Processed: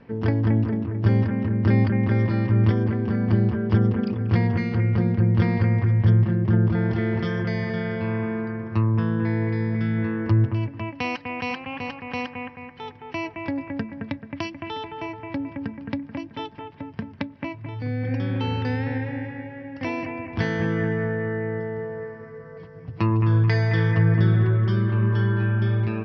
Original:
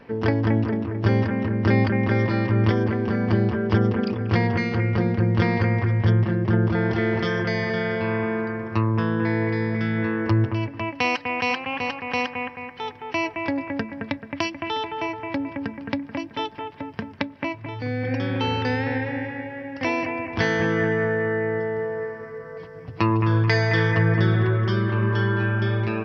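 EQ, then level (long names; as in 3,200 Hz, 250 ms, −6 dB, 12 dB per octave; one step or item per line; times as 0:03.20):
high-frequency loss of the air 120 metres
bass and treble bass +12 dB, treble +4 dB
low-shelf EQ 120 Hz −8 dB
−5.0 dB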